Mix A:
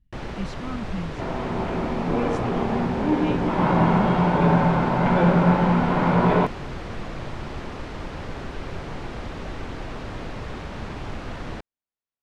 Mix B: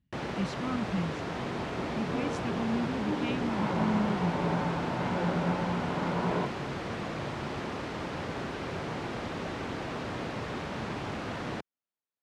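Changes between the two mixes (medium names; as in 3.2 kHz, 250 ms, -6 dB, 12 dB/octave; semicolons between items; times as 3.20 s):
second sound -12.0 dB; master: add high-pass 120 Hz 12 dB/octave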